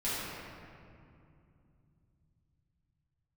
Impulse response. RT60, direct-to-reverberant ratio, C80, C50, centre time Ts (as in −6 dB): 2.5 s, −11.5 dB, −2.0 dB, −4.0 dB, 165 ms